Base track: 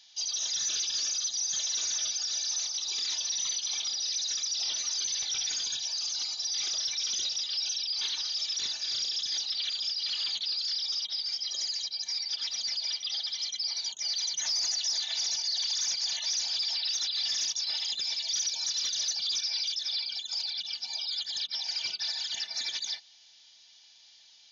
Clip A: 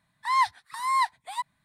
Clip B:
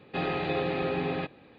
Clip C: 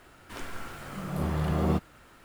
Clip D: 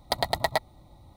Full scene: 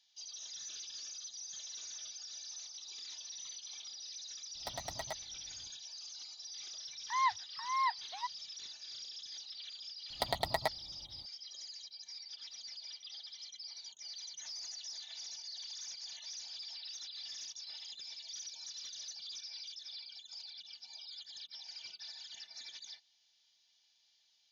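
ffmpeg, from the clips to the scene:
ffmpeg -i bed.wav -i cue0.wav -i cue1.wav -i cue2.wav -i cue3.wav -filter_complex "[4:a]asplit=2[link_01][link_02];[0:a]volume=-15.5dB[link_03];[link_01]volume=19.5dB,asoftclip=hard,volume=-19.5dB[link_04];[1:a]lowpass=frequency=4300:width=0.5412,lowpass=frequency=4300:width=1.3066[link_05];[link_04]atrim=end=1.16,asetpts=PTS-STARTPTS,volume=-14dB,afade=type=in:duration=0.004:curve=hsin,afade=type=out:start_time=1.156:duration=0.004:curve=hsin,adelay=4550[link_06];[link_05]atrim=end=1.64,asetpts=PTS-STARTPTS,volume=-8.5dB,afade=type=in:duration=0.004:curve=hsin,afade=type=out:start_time=1.636:duration=0.004:curve=hsin,adelay=6850[link_07];[link_02]atrim=end=1.16,asetpts=PTS-STARTPTS,volume=-8dB,afade=type=in:duration=0.004:curve=hsin,afade=type=out:start_time=1.156:duration=0.004:curve=hsin,adelay=445410S[link_08];[link_03][link_06][link_07][link_08]amix=inputs=4:normalize=0" out.wav

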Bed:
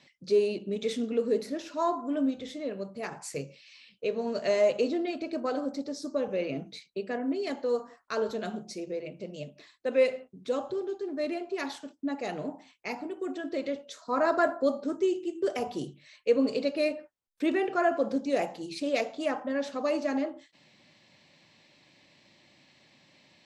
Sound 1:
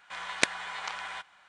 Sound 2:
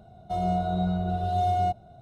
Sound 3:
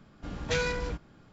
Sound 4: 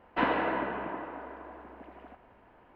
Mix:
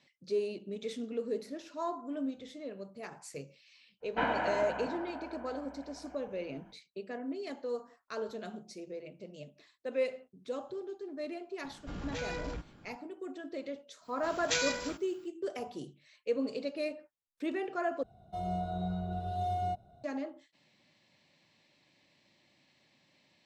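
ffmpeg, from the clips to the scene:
ffmpeg -i bed.wav -i cue0.wav -i cue1.wav -i cue2.wav -i cue3.wav -filter_complex "[3:a]asplit=2[link_01][link_02];[0:a]volume=-8dB[link_03];[4:a]aecho=1:1:1.3:0.55[link_04];[link_01]acompressor=threshold=-35dB:ratio=4:attack=0.57:release=25:knee=1:detection=peak[link_05];[link_02]aemphasis=mode=production:type=riaa[link_06];[link_03]asplit=2[link_07][link_08];[link_07]atrim=end=18.034[link_09];[2:a]atrim=end=2.01,asetpts=PTS-STARTPTS,volume=-9dB[link_10];[link_08]atrim=start=20.036[link_11];[link_04]atrim=end=2.75,asetpts=PTS-STARTPTS,volume=-4.5dB,afade=type=in:duration=0.05,afade=type=out:start_time=2.7:duration=0.05,adelay=4000[link_12];[link_05]atrim=end=1.32,asetpts=PTS-STARTPTS,volume=-1dB,afade=type=in:duration=0.004:curve=hsin,afade=type=out:start_time=1.316:duration=0.004:curve=hsin,adelay=11640[link_13];[link_06]atrim=end=1.32,asetpts=PTS-STARTPTS,volume=-4dB,afade=type=in:duration=0.1,afade=type=out:start_time=1.22:duration=0.1,adelay=14000[link_14];[link_09][link_10]acrossfade=duration=0.004:curve1=hsin:curve2=hsin[link_15];[link_15][link_11]acrossfade=duration=0.004:curve1=hsin:curve2=hsin[link_16];[link_16][link_12][link_13][link_14]amix=inputs=4:normalize=0" out.wav

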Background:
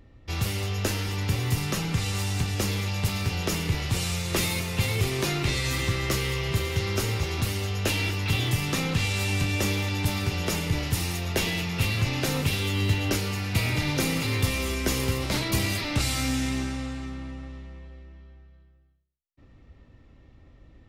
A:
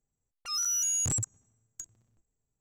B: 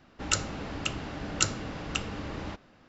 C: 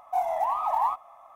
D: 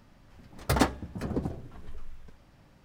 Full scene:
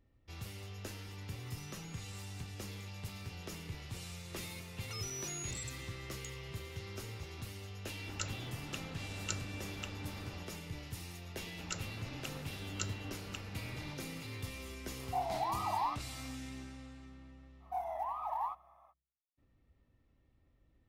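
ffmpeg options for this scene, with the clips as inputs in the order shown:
ffmpeg -i bed.wav -i cue0.wav -i cue1.wav -i cue2.wav -filter_complex "[1:a]asplit=2[link_01][link_02];[2:a]asplit=2[link_03][link_04];[3:a]asplit=2[link_05][link_06];[0:a]volume=-18dB[link_07];[link_01]acompressor=threshold=-43dB:ratio=6:attack=3.2:release=140:knee=1:detection=peak[link_08];[link_02]acompressor=threshold=-40dB:ratio=6:attack=3.2:release=140:knee=1:detection=peak[link_09];[link_06]equalizer=frequency=7300:width_type=o:width=0.36:gain=-9[link_10];[link_08]atrim=end=2.6,asetpts=PTS-STARTPTS,volume=-17dB,afade=type=in:duration=0.004:curve=hsin,afade=type=out:start_time=2.596:duration=0.004:curve=hsin,adelay=1010[link_11];[link_09]atrim=end=2.6,asetpts=PTS-STARTPTS,volume=-3.5dB,afade=type=in:duration=0.004:curve=hsin,afade=type=out:start_time=2.596:duration=0.004:curve=hsin,adelay=196245S[link_12];[link_03]atrim=end=2.88,asetpts=PTS-STARTPTS,volume=-13dB,afade=type=in:duration=0.004:curve=hsin,afade=type=out:start_time=2.876:duration=0.004:curve=hsin,adelay=7880[link_13];[link_04]atrim=end=2.88,asetpts=PTS-STARTPTS,volume=-14dB,afade=type=in:duration=0.004:curve=hsin,afade=type=out:start_time=2.876:duration=0.004:curve=hsin,adelay=11390[link_14];[link_05]atrim=end=1.35,asetpts=PTS-STARTPTS,volume=-9.5dB,afade=type=in:duration=0.004:curve=hsin,afade=type=out:start_time=1.346:duration=0.004:curve=hsin,adelay=15000[link_15];[link_10]atrim=end=1.35,asetpts=PTS-STARTPTS,volume=-12dB,afade=type=in:duration=0.05,afade=type=out:start_time=1.3:duration=0.05,adelay=17590[link_16];[link_07][link_11][link_12][link_13][link_14][link_15][link_16]amix=inputs=7:normalize=0" out.wav

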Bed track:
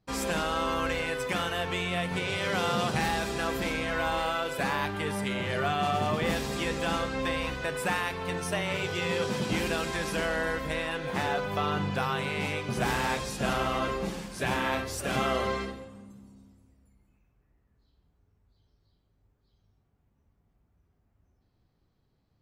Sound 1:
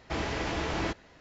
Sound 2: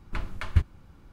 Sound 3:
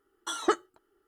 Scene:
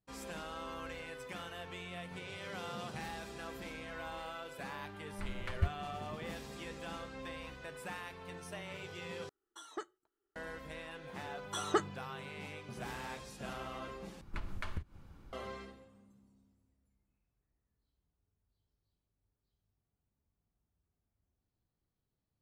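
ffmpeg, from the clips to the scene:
ffmpeg -i bed.wav -i cue0.wav -i cue1.wav -i cue2.wav -filter_complex "[2:a]asplit=2[link_01][link_02];[3:a]asplit=2[link_03][link_04];[0:a]volume=-15dB[link_05];[link_01]dynaudnorm=framelen=130:gausssize=3:maxgain=9.5dB[link_06];[link_02]acompressor=threshold=-29dB:ratio=16:attack=2.8:release=266:knee=1:detection=peak[link_07];[link_05]asplit=3[link_08][link_09][link_10];[link_08]atrim=end=9.294[link_11];[link_03]atrim=end=1.07,asetpts=PTS-STARTPTS,volume=-17.5dB[link_12];[link_09]atrim=start=10.356:end=14.214[link_13];[link_07]atrim=end=1.12,asetpts=PTS-STARTPTS,volume=-3.5dB[link_14];[link_10]atrim=start=15.326[link_15];[link_06]atrim=end=1.12,asetpts=PTS-STARTPTS,volume=-16.5dB,afade=type=in:duration=0.004:curve=hsin,afade=type=out:start_time=1.116:duration=0.004:curve=hsin,adelay=5060[link_16];[link_04]atrim=end=1.07,asetpts=PTS-STARTPTS,volume=-5.5dB,afade=type=in:duration=0.004:curve=hsin,afade=type=out:start_time=1.066:duration=0.004:curve=hsin,adelay=11260[link_17];[link_11][link_12]acrossfade=duration=0.004:curve1=hsin:curve2=hsin[link_18];[link_18][link_13]acrossfade=duration=0.004:curve1=hsin:curve2=hsin[link_19];[link_19][link_14]acrossfade=duration=0.004:curve1=hsin:curve2=hsin[link_20];[link_20][link_15]acrossfade=duration=0.004:curve1=hsin:curve2=hsin[link_21];[link_21][link_16][link_17]amix=inputs=3:normalize=0" out.wav

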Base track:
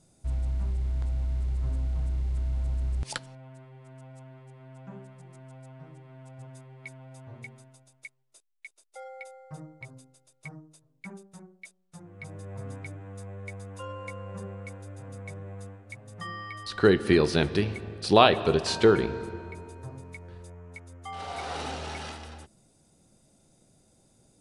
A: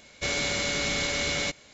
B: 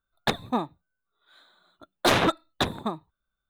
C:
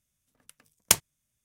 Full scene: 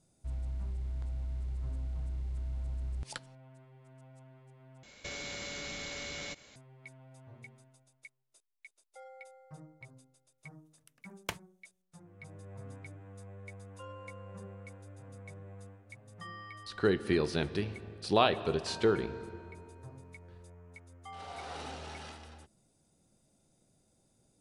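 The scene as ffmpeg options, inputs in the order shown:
ffmpeg -i bed.wav -i cue0.wav -i cue1.wav -i cue2.wav -filter_complex "[0:a]volume=-8dB[link_01];[1:a]acompressor=threshold=-34dB:ratio=6:attack=3.2:release=140:knee=1:detection=peak[link_02];[3:a]acrossover=split=3300[link_03][link_04];[link_04]acompressor=threshold=-32dB:ratio=4:attack=1:release=60[link_05];[link_03][link_05]amix=inputs=2:normalize=0[link_06];[link_01]asplit=2[link_07][link_08];[link_07]atrim=end=4.834[link_09];[link_02]atrim=end=1.73,asetpts=PTS-STARTPTS,volume=-4dB[link_10];[link_08]atrim=start=6.556[link_11];[link_06]atrim=end=1.44,asetpts=PTS-STARTPTS,volume=-9.5dB,afade=type=in:duration=0.004:curve=hsin,afade=type=out:start_time=1.436:duration=0.004:curve=hsin,adelay=10380[link_12];[link_09][link_10]acrossfade=duration=0.004:curve1=hsin:curve2=hsin[link_13];[link_13][link_11]acrossfade=duration=0.004:curve1=hsin:curve2=hsin[link_14];[link_14][link_12]amix=inputs=2:normalize=0" out.wav

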